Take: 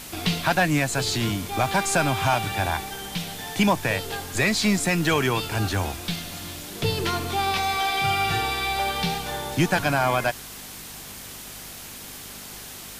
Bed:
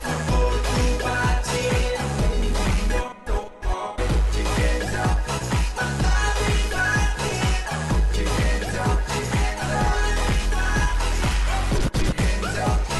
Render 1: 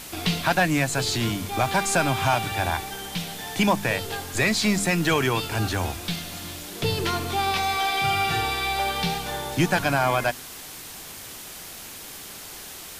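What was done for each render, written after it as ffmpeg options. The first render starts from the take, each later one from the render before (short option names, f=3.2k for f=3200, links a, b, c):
-af "bandreject=f=50:t=h:w=4,bandreject=f=100:t=h:w=4,bandreject=f=150:t=h:w=4,bandreject=f=200:t=h:w=4,bandreject=f=250:t=h:w=4"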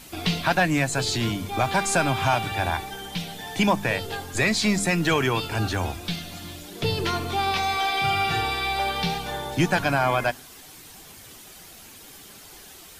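-af "afftdn=nr=8:nf=-40"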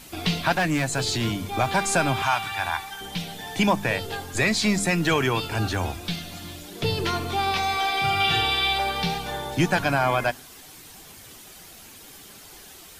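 -filter_complex "[0:a]asettb=1/sr,asplit=3[a][b][c];[a]atrim=end=0.554[d];[b]atrim=start=0.55:end=1.25,asetpts=PTS-STARTPTS,afade=t=in:d=0.004:c=qsin,afade=t=out:st=0.696:d=0.004:c=qsin,volume=18.5dB,asoftclip=hard,volume=-18.5dB[e];[c]atrim=start=1.246[f];[d][e]acrossfade=d=0.004:c1=hsin:c2=qsin[g];[g][f]acrossfade=d=0.004:c1=qsin:c2=hsin,asettb=1/sr,asplit=3[h][i][j];[h]atrim=end=2.224[k];[i]atrim=start=2.22:end=3.01,asetpts=PTS-STARTPTS,afade=t=in:d=0.004:c=qsin,afade=t=out:st=0.786:d=0.004:c=qsin,lowshelf=f=710:t=q:w=1.5:g=-10[l];[j]atrim=start=3.006[m];[k][l]acrossfade=d=0.004:c1=hsin:c2=qsin[n];[n][m]acrossfade=d=0.004:c1=qsin:c2=hsin,asettb=1/sr,asplit=3[o][p][q];[o]atrim=end=8.204[r];[p]atrim=start=8.2:end=8.78,asetpts=PTS-STARTPTS,afade=t=in:d=0.004:c=qsin,afade=t=out:st=0.576:d=0.004:c=qsin,equalizer=f=3.2k:w=2.9:g=11.5[s];[q]atrim=start=8.776[t];[r][s]acrossfade=d=0.004:c1=hsin:c2=qsin[u];[u][t]acrossfade=d=0.004:c1=qsin:c2=hsin"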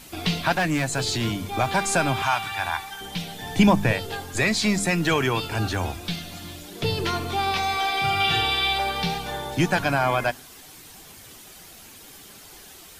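-filter_complex "[0:a]asettb=1/sr,asplit=3[a][b][c];[a]atrim=end=3.414[d];[b]atrim=start=3.41:end=3.93,asetpts=PTS-STARTPTS,afade=t=in:d=0.004:c=qsin,afade=t=out:st=0.516:d=0.004:c=qsin,lowshelf=f=270:g=10[e];[c]atrim=start=3.926[f];[d][e]acrossfade=d=0.004:c1=hsin:c2=qsin[g];[g][f]acrossfade=d=0.004:c1=qsin:c2=hsin"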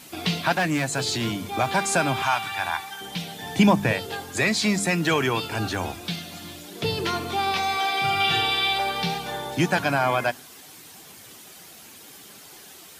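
-af "highpass=120"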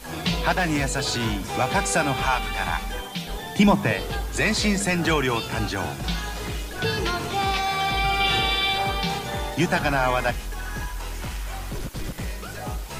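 -filter_complex "[1:a]volume=-10dB[a];[0:a][a]amix=inputs=2:normalize=0"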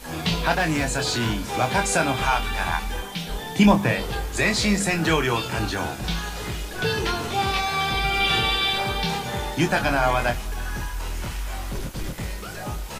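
-filter_complex "[0:a]asplit=2[a][b];[b]adelay=25,volume=-7dB[c];[a][c]amix=inputs=2:normalize=0,aecho=1:1:317:0.0668"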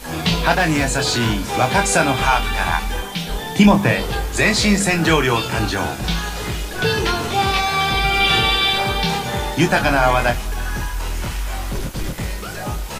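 -af "volume=5.5dB,alimiter=limit=-2dB:level=0:latency=1"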